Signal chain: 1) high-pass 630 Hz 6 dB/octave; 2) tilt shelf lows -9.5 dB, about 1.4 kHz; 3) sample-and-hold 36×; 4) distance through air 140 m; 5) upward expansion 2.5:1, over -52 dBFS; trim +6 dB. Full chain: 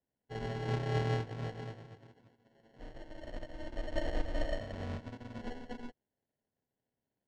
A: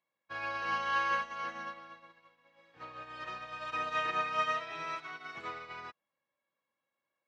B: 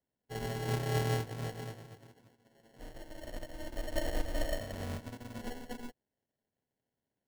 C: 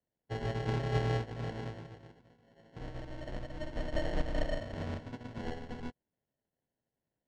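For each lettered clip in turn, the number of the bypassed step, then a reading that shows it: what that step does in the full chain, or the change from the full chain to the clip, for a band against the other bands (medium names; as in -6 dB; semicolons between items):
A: 3, 125 Hz band -25.5 dB; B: 4, 4 kHz band +3.0 dB; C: 1, momentary loudness spread change -4 LU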